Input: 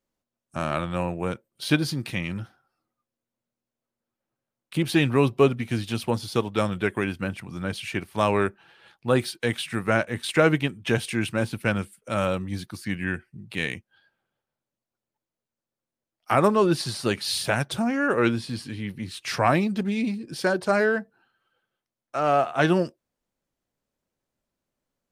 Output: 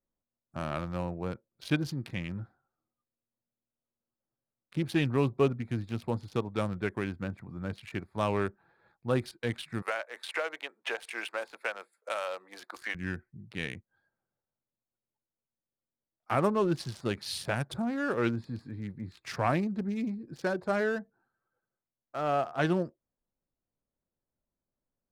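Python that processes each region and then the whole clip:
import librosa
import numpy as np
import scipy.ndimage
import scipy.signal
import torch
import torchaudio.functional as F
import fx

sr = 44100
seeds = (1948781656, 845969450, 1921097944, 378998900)

y = fx.chain(x, sr, fx.highpass(hz=530.0, slope=24),
    fx.band_squash(depth_pct=100), at=(9.82, 12.95))
y = fx.wiener(y, sr, points=15)
y = fx.low_shelf(y, sr, hz=97.0, db=6.5)
y = y * librosa.db_to_amplitude(-7.5)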